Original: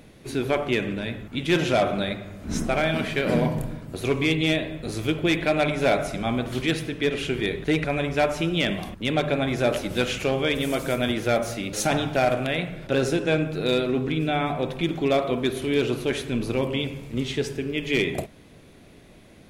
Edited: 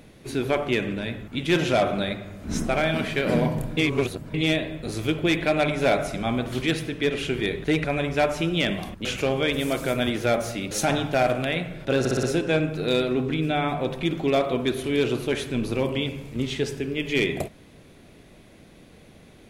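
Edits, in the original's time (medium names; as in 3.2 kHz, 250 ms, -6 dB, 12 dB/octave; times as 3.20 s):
3.77–4.34 s: reverse
9.05–10.07 s: delete
13.01 s: stutter 0.06 s, 5 plays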